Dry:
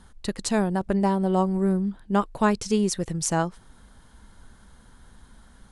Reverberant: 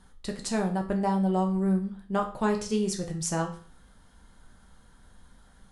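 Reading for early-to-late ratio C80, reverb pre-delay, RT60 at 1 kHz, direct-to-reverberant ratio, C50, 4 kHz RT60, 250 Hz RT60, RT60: 14.5 dB, 5 ms, 0.45 s, 2.0 dB, 10.5 dB, 0.40 s, 0.45 s, 0.45 s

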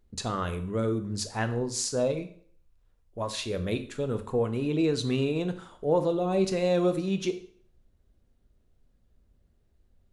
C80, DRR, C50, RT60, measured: 16.5 dB, 8.5 dB, 12.5 dB, 0.55 s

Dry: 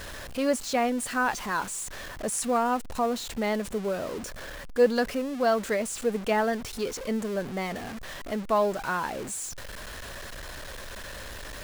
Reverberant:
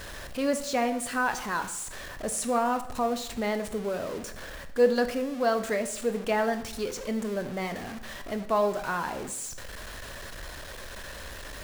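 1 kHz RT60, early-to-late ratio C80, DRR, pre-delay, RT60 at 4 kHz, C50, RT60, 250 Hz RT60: 0.75 s, 14.5 dB, 8.5 dB, 20 ms, 0.60 s, 12.0 dB, 0.80 s, 0.85 s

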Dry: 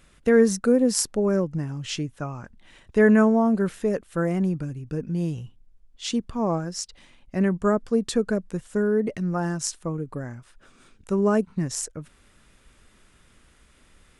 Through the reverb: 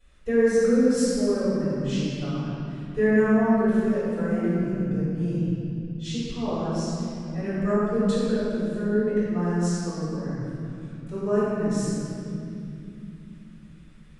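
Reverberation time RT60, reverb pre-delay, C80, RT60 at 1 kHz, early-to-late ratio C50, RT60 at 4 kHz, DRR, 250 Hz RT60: 2.6 s, 4 ms, -2.5 dB, 2.2 s, -5.0 dB, 1.9 s, -15.0 dB, 5.0 s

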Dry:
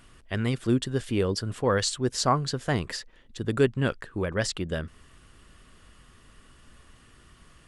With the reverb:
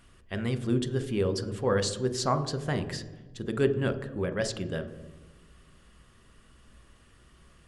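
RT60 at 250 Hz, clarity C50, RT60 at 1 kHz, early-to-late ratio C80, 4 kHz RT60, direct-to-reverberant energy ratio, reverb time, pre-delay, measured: 1.4 s, 12.0 dB, 1.1 s, 13.5 dB, 0.85 s, 7.0 dB, 1.2 s, 3 ms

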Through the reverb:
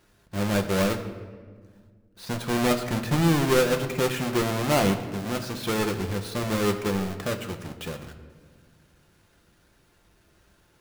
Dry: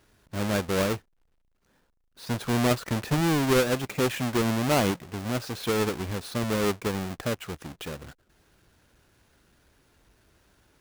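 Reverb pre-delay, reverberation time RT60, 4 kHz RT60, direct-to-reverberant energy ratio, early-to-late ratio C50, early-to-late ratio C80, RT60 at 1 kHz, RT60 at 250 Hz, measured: 6 ms, 1.7 s, 1.0 s, 4.5 dB, 10.5 dB, 11.5 dB, 1.5 s, 2.7 s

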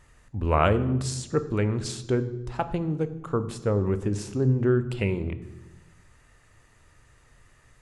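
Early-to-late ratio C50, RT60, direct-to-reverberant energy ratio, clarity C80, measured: 14.5 dB, 1.1 s, 11.0 dB, 16.0 dB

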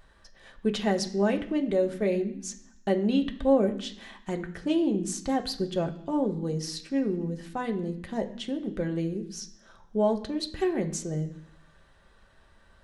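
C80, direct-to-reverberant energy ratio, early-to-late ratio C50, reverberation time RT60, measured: 15.5 dB, 3.0 dB, 13.0 dB, 0.65 s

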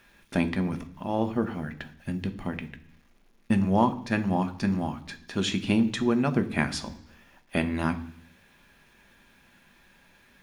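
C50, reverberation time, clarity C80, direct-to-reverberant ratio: 15.5 dB, 0.65 s, 18.5 dB, 8.0 dB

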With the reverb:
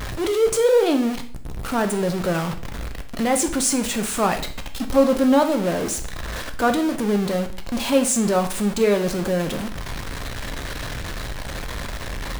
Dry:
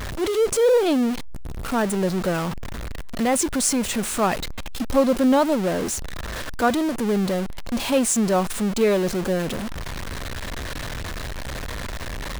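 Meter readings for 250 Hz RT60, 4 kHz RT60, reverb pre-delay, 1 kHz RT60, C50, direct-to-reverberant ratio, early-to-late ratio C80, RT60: 0.45 s, 0.45 s, 5 ms, 0.50 s, 11.5 dB, 6.0 dB, 15.5 dB, 0.50 s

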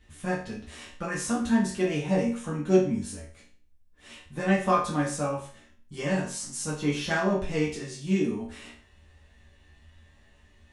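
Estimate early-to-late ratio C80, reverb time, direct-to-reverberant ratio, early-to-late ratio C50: 10.5 dB, 0.45 s, -7.0 dB, 5.5 dB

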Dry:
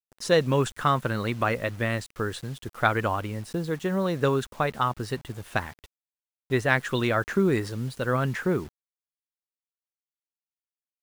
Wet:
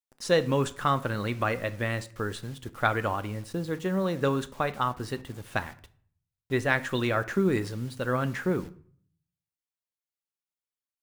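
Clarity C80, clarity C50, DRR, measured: 22.0 dB, 18.0 dB, 12.0 dB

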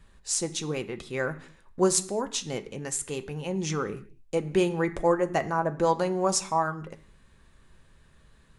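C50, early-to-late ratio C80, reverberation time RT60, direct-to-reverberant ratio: 15.5 dB, 18.5 dB, not exponential, 6.5 dB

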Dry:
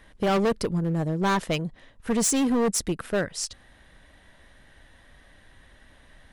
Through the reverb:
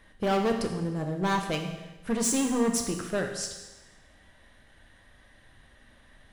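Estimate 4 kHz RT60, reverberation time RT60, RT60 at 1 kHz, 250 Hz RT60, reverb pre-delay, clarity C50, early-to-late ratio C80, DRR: 1.1 s, 1.1 s, 1.1 s, 1.1 s, 8 ms, 6.0 dB, 8.0 dB, 3.0 dB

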